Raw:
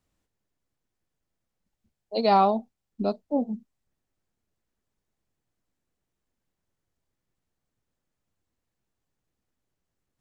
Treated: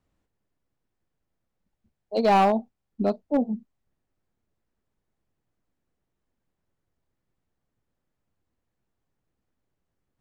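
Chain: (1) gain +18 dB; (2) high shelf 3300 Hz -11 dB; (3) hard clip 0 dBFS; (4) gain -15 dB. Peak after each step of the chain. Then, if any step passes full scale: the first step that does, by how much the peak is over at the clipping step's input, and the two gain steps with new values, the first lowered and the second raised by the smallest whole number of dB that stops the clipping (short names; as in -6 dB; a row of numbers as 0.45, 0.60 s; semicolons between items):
+8.5, +7.5, 0.0, -15.0 dBFS; step 1, 7.5 dB; step 1 +10 dB, step 4 -7 dB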